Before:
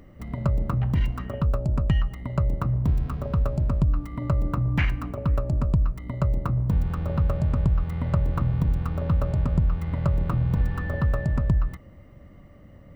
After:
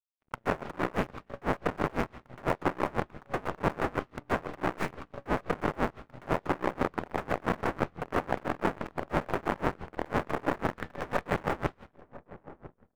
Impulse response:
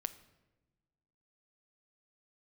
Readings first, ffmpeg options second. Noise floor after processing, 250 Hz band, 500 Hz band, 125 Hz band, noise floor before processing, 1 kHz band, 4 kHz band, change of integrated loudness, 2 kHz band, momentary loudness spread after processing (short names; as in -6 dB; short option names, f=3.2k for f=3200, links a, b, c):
-69 dBFS, -4.5 dB, +3.0 dB, -17.0 dB, -49 dBFS, +5.5 dB, n/a, -7.5 dB, +4.0 dB, 8 LU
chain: -filter_complex "[0:a]aeval=exprs='(mod(10.6*val(0)+1,2)-1)/10.6':c=same,highpass=f=310:p=1,aeval=exprs='0.188*(cos(1*acos(clip(val(0)/0.188,-1,1)))-cos(1*PI/2))+0.0473*(cos(3*acos(clip(val(0)/0.188,-1,1)))-cos(3*PI/2))+0.00376*(cos(8*acos(clip(val(0)/0.188,-1,1)))-cos(8*PI/2))':c=same,lowpass=f=2.3k:p=1,asplit=2[a][b];[1:a]atrim=start_sample=2205,asetrate=25137,aresample=44100,lowpass=2k[c];[b][c]afir=irnorm=-1:irlink=0,volume=6.5dB[d];[a][d]amix=inputs=2:normalize=0,aeval=exprs='sgn(val(0))*max(abs(val(0))-0.00944,0)':c=same,asplit=2[e][f];[f]adelay=1001,lowpass=f=940:p=1,volume=-17dB,asplit=2[g][h];[h]adelay=1001,lowpass=f=940:p=1,volume=0.52,asplit=2[i][j];[j]adelay=1001,lowpass=f=940:p=1,volume=0.52,asplit=2[k][l];[l]adelay=1001,lowpass=f=940:p=1,volume=0.52,asplit=2[m][n];[n]adelay=1001,lowpass=f=940:p=1,volume=0.52[o];[e][g][i][k][m][o]amix=inputs=6:normalize=0,aeval=exprs='val(0)*pow(10,-26*(0.5-0.5*cos(2*PI*6*n/s))/20)':c=same"